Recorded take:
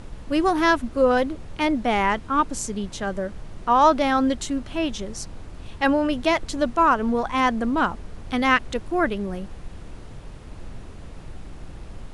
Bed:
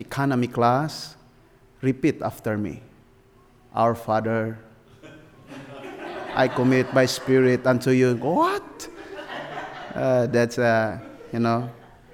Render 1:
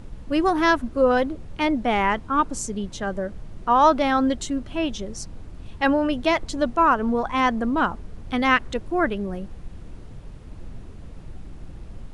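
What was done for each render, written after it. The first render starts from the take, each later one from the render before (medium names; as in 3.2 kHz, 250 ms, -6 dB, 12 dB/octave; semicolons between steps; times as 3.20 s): noise reduction 6 dB, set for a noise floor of -40 dBFS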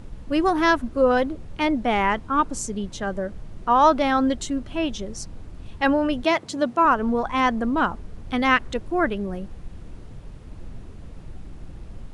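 6.24–6.85 s: high-pass 110 Hz 24 dB/octave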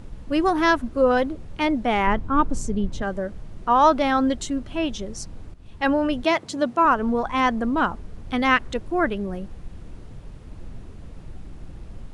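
2.07–3.02 s: tilt EQ -2 dB/octave; 5.54–6.07 s: fade in equal-power, from -13.5 dB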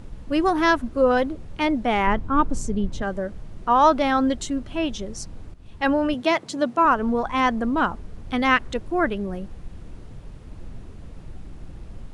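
6.14–6.78 s: high-pass 110 Hz 24 dB/octave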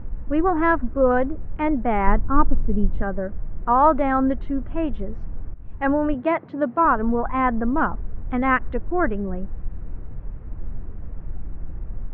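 low-pass 1.9 kHz 24 dB/octave; bass shelf 68 Hz +11 dB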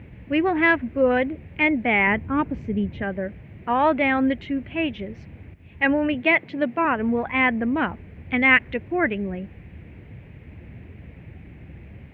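high-pass 77 Hz 24 dB/octave; resonant high shelf 1.7 kHz +10.5 dB, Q 3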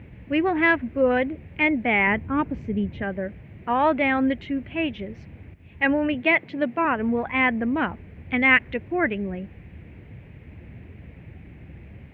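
trim -1 dB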